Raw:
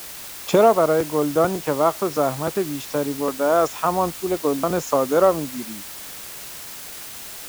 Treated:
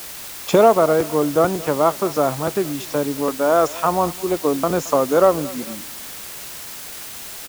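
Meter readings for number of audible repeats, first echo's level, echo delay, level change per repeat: 2, -20.0 dB, 0.222 s, -6.0 dB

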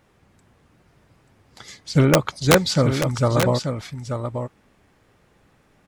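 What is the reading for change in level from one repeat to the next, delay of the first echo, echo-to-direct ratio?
no steady repeat, 0.885 s, -7.5 dB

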